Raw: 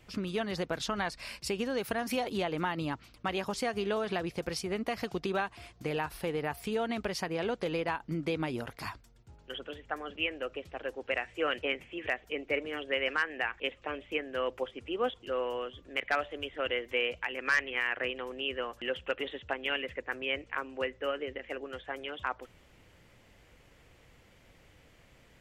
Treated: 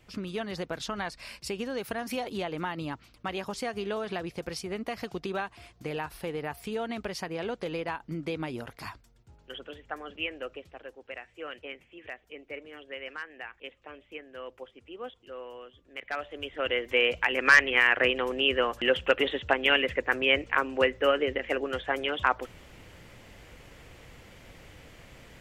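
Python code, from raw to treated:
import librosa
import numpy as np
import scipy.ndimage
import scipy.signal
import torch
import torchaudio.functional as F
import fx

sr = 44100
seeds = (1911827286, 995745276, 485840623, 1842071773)

y = fx.gain(x, sr, db=fx.line((10.46, -1.0), (10.99, -9.0), (15.87, -9.0), (16.44, 1.0), (17.33, 9.5)))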